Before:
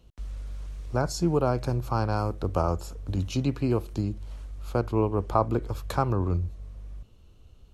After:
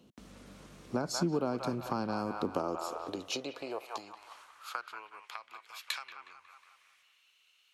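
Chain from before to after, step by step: band-limited delay 0.182 s, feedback 40%, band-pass 1500 Hz, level -5 dB; compressor 6:1, threshold -30 dBFS, peak gain reduction 13.5 dB; high-pass sweep 220 Hz -> 2200 Hz, 2.37–5.38; dynamic EQ 3700 Hz, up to +5 dB, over -57 dBFS, Q 0.88

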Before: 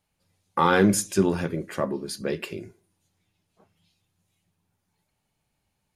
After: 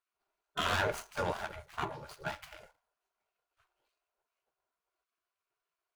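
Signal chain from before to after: median filter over 25 samples; small resonant body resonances 270/510/850/1400 Hz, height 15 dB, ringing for 55 ms; spectral gate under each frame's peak -20 dB weak

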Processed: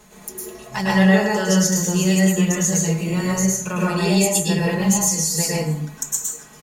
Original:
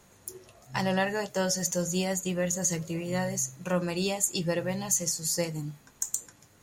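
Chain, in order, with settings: comb 4.7 ms, depth 86%; in parallel at 0 dB: compressor, threshold -37 dBFS, peak gain reduction 16.5 dB; on the sum: plate-style reverb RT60 0.65 s, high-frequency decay 0.55×, pre-delay 95 ms, DRR -5.5 dB

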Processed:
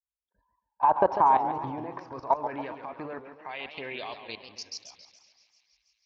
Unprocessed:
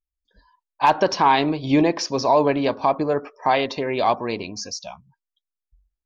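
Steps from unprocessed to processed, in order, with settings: gate -53 dBFS, range -7 dB; tilt -3.5 dB/oct; in parallel at -2 dB: vocal rider within 3 dB 0.5 s; on the sum: band-pass sweep 940 Hz -> 4800 Hz, 1.46–4.95; level quantiser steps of 19 dB; bell 62 Hz +10 dB 1.9 oct; on a send: thinning echo 0.163 s, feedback 80%, high-pass 700 Hz, level -21 dB; on the sum: warbling echo 0.139 s, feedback 52%, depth 207 cents, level -9.5 dB

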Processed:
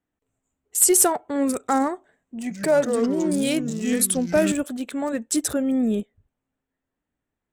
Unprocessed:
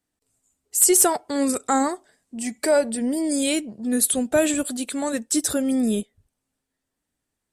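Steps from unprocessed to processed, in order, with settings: Wiener smoothing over 9 samples; 2.38–4.52 echoes that change speed 0.123 s, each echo -4 st, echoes 2, each echo -6 dB

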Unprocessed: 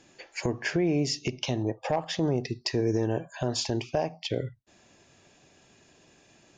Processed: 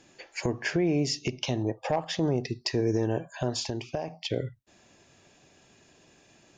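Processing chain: 3.49–4.08 compressor, threshold -28 dBFS, peak gain reduction 6.5 dB

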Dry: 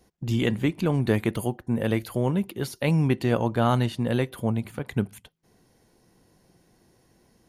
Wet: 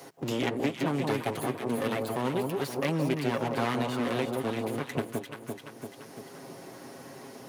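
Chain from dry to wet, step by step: minimum comb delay 7.4 ms; HPF 220 Hz 12 dB/oct; on a send: echo with dull and thin repeats by turns 0.171 s, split 980 Hz, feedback 59%, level -3 dB; on the sum: three-band squash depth 70%; gain -2 dB

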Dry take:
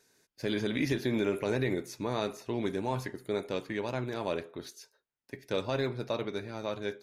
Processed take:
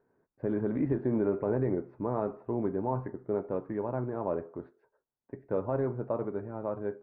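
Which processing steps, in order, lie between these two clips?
LPF 1200 Hz 24 dB/oct; gain +1.5 dB

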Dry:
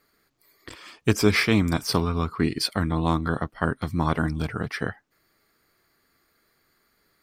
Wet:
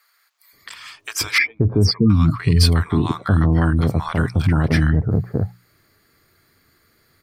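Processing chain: 1.38–2.1 spectral contrast raised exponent 2.8; bell 100 Hz +11 dB 1.1 oct; limiter -14 dBFS, peak gain reduction 11 dB; notches 60/120/180 Hz; bands offset in time highs, lows 0.53 s, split 840 Hz; gain +7.5 dB

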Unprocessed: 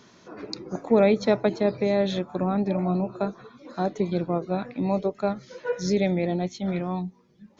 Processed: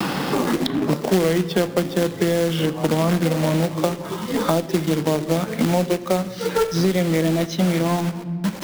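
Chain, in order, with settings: speed glide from 80% -> 96%; HPF 140 Hz 24 dB/oct; gate with hold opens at -49 dBFS; in parallel at +2 dB: compressor 12:1, threshold -33 dBFS, peak gain reduction 19 dB; on the sum: companded quantiser 4-bit; on a send at -14.5 dB: reverb RT60 1.1 s, pre-delay 9 ms; on the sum: three-band squash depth 100%; gain +2 dB

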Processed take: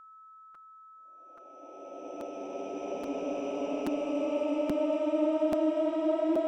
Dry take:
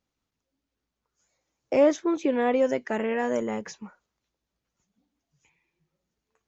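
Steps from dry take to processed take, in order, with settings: Doppler pass-by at 2.65, 33 m/s, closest 21 m; bell 460 Hz +7.5 dB 0.63 oct; Paulstretch 33×, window 0.10 s, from 1.49; ten-band EQ 125 Hz -11 dB, 250 Hz +9 dB, 500 Hz -8 dB, 2000 Hz -6 dB; whine 1300 Hz -45 dBFS; crackling interface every 0.83 s, samples 256, repeat, from 0.54; gain -5 dB

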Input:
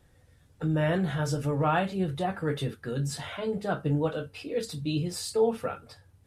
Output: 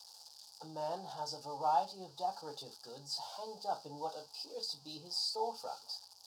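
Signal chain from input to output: switching spikes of -30.5 dBFS; double band-pass 2000 Hz, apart 2.5 oct; gain +3 dB

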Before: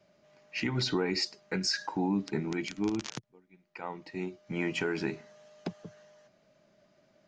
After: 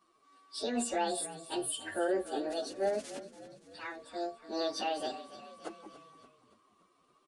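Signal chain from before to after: pitch shift by moving bins +11 st; downsampling 22050 Hz; frequency-shifting echo 0.286 s, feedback 56%, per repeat -36 Hz, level -15 dB

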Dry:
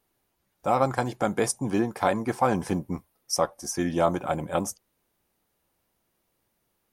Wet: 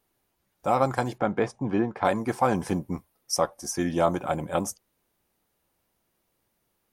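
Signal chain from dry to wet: 1.18–2.05 LPF 2600 Hz 12 dB/oct

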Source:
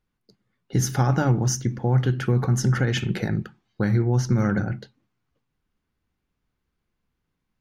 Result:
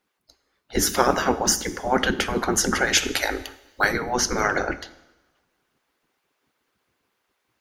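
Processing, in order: spectral gate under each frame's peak -15 dB weak; 2.86–3.93 high shelf 7000 Hz +11 dB; harmonic-percussive split percussive +7 dB; two-slope reverb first 0.9 s, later 2.4 s, from -26 dB, DRR 13 dB; in parallel at 0 dB: vocal rider 0.5 s

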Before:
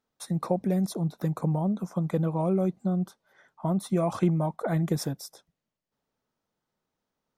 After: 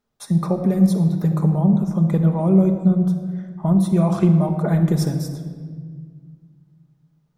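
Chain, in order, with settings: low shelf 180 Hz +9 dB; shoebox room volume 2500 m³, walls mixed, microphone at 1.3 m; gain +2.5 dB

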